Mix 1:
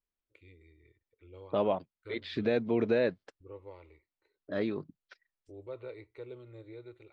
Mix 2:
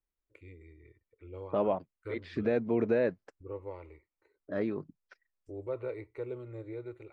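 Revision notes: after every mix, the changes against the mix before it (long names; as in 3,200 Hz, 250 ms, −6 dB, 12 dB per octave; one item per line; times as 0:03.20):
first voice +6.5 dB
master: add parametric band 3,700 Hz −12 dB 0.89 octaves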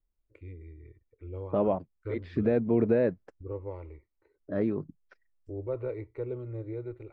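master: add spectral tilt −2.5 dB per octave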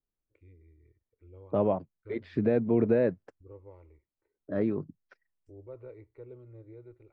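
first voice −12.0 dB
second voice: add high-pass filter 78 Hz 24 dB per octave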